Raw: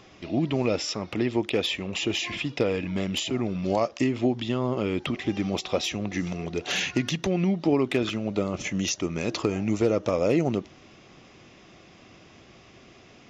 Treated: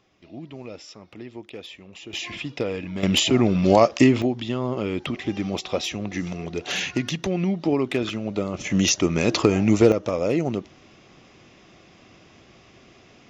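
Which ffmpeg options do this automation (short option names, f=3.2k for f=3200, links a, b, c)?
-af "asetnsamples=n=441:p=0,asendcmd='2.13 volume volume -2dB;3.03 volume volume 9dB;4.22 volume volume 0.5dB;8.7 volume volume 7.5dB;9.92 volume volume 0dB',volume=-13dB"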